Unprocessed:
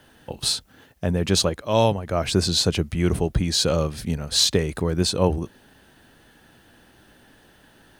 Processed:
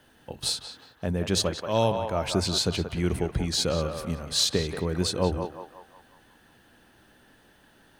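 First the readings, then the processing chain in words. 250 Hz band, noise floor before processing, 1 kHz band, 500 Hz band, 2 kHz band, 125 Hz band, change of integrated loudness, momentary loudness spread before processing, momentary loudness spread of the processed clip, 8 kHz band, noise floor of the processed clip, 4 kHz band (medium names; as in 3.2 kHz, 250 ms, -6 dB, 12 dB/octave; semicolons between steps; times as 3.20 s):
-5.0 dB, -55 dBFS, -3.5 dB, -4.5 dB, -4.0 dB, -5.5 dB, -5.0 dB, 8 LU, 10 LU, -5.0 dB, -59 dBFS, -4.5 dB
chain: hum notches 50/100/150 Hz; band-passed feedback delay 181 ms, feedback 54%, band-pass 1.1 kHz, level -4.5 dB; trim -5 dB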